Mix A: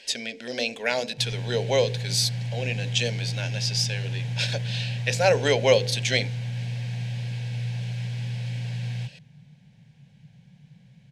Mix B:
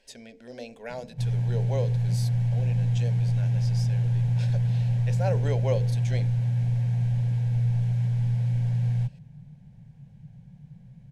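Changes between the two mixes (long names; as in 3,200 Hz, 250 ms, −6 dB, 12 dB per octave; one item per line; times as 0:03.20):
speech −9.5 dB
master: remove meter weighting curve D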